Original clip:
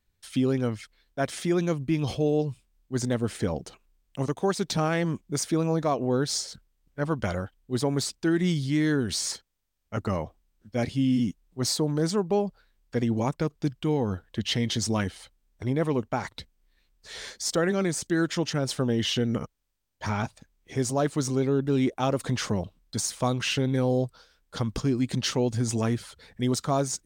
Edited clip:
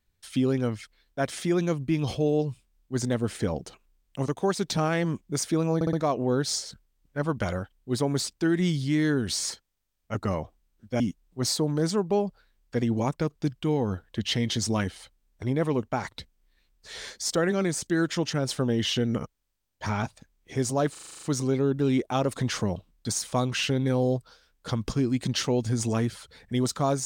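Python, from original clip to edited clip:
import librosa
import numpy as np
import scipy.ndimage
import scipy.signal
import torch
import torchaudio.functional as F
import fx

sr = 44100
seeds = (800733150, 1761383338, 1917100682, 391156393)

y = fx.edit(x, sr, fx.stutter(start_s=5.75, slice_s=0.06, count=4),
    fx.cut(start_s=10.82, length_s=0.38),
    fx.stutter(start_s=21.11, slice_s=0.04, count=9), tone=tone)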